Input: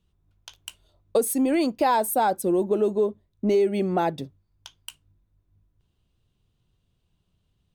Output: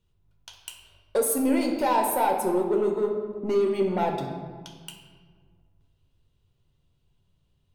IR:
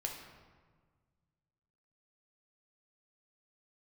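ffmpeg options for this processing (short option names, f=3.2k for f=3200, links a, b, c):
-filter_complex "[0:a]asettb=1/sr,asplit=3[a][b][c];[a]atrim=end=0.584[d];[b]atrim=start=0.58:end=1.95,asetpts=PTS-STARTPTS,afade=t=in:d=0.004:c=qsin,afade=t=out:st=1.366:d=0.004:c=qsin,equalizer=f=11k:w=0.66:g=5[e];[c]atrim=start=1.946[f];[d][e]acrossfade=d=0.004:c1=hsin:c2=qsin[g];[g][f]acrossfade=d=0.004:c1=qsin:c2=hsin,asoftclip=type=tanh:threshold=-17.5dB[h];[1:a]atrim=start_sample=2205[i];[h][i]afir=irnorm=-1:irlink=0"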